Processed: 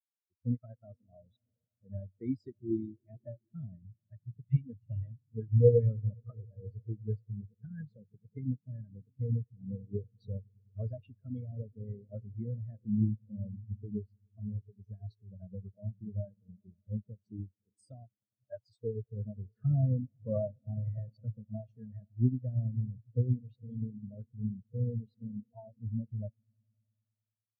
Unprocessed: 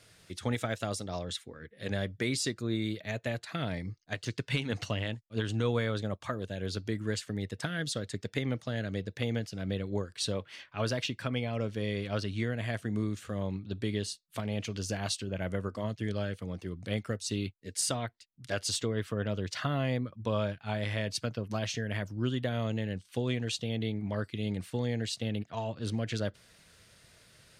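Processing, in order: on a send: swelling echo 0.103 s, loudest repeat 5, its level -16 dB; on the sum: spectral expander 4:1; gain +6 dB

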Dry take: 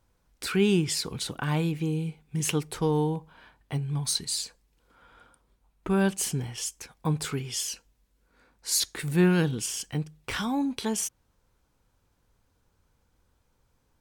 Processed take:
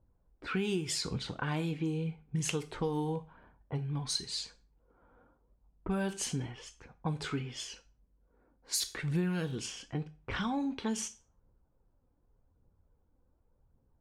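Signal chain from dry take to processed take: flange 0.87 Hz, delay 0.1 ms, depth 4 ms, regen +52%; low-pass opened by the level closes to 710 Hz, open at -26 dBFS; on a send at -12 dB: bell 6800 Hz +7 dB 0.89 oct + reverb RT60 0.35 s, pre-delay 16 ms; on the sum: compressor, threshold -31 dBFS, peak gain reduction 12.5 dB; gain +2 dB

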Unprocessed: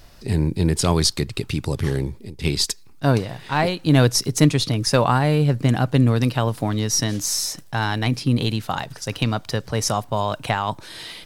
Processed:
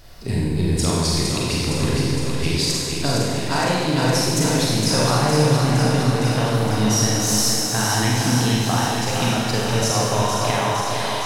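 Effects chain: compressor, threshold -21 dBFS, peak gain reduction 11.5 dB; thinning echo 0.462 s, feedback 72%, high-pass 170 Hz, level -5.5 dB; Schroeder reverb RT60 1.7 s, combs from 33 ms, DRR -4.5 dB

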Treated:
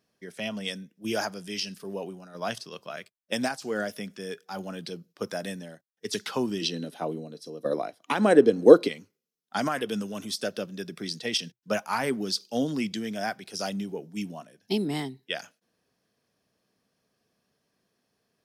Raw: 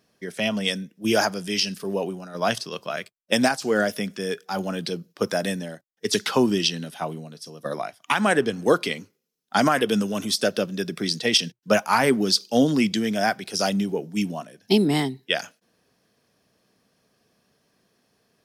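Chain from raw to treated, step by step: 6.61–8.87 small resonant body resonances 310/460/4000 Hz, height 11 dB -> 15 dB, ringing for 20 ms; gain -8.5 dB

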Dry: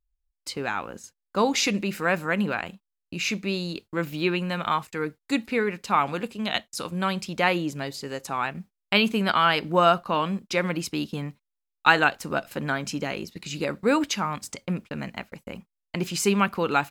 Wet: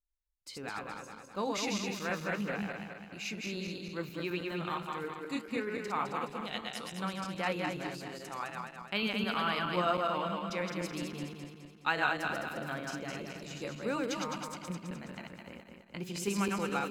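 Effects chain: regenerating reverse delay 0.105 s, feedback 71%, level -2.5 dB; flange 1.6 Hz, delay 3.6 ms, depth 3.1 ms, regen +88%; gain -8.5 dB

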